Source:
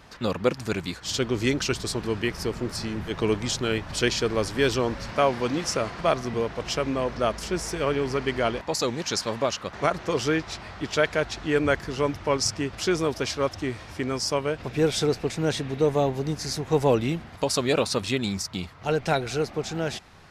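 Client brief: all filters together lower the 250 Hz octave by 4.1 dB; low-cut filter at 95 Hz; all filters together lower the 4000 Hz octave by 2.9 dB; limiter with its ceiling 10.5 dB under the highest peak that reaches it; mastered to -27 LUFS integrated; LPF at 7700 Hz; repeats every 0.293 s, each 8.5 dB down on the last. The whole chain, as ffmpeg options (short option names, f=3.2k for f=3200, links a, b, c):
-af "highpass=95,lowpass=7.7k,equalizer=f=250:t=o:g=-5.5,equalizer=f=4k:t=o:g=-3.5,alimiter=limit=-18dB:level=0:latency=1,aecho=1:1:293|586|879|1172:0.376|0.143|0.0543|0.0206,volume=3dB"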